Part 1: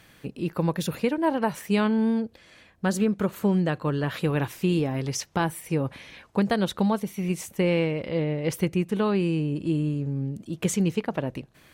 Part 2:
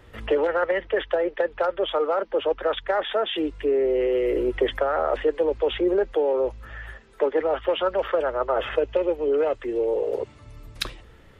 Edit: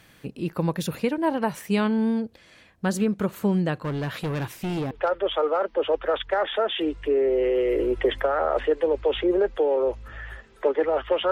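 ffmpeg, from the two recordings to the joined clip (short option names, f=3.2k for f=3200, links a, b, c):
-filter_complex "[0:a]asettb=1/sr,asplit=3[a][b][c];[a]atrim=end=3.794[d];[b]atrim=start=3.79:end=4.91,asetpts=PTS-STARTPTS,afade=t=in:d=0.004:c=qsin,afade=t=out:st=1.116:d=0.004:c=qsin,volume=24.5dB,asoftclip=hard,volume=-24.5dB[e];[c]atrim=start=4.906[f];[d][e]acrossfade=d=0.004:c1=hsin:c2=qsin[g];[g][f]acrossfade=d=0.004:c1=qsin:c2=hsin,apad=whole_dur=11.31,atrim=end=11.31,atrim=end=4.912[h];[1:a]atrim=start=1.478:end=7.88[i];[h][i]acrossfade=d=0.004:c1=hsin:c2=hsin"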